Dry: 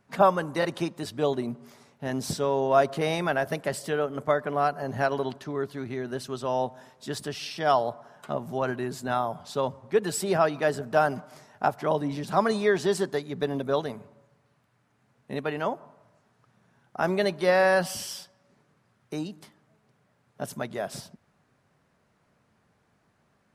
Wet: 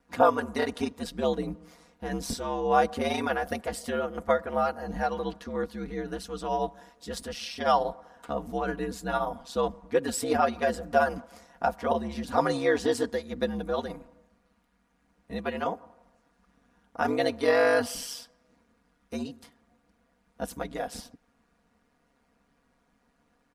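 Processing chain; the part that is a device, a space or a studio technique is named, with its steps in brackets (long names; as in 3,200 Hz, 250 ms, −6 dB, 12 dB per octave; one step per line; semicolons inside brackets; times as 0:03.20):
ring-modulated robot voice (ring modulation 69 Hz; comb filter 4.2 ms, depth 65%)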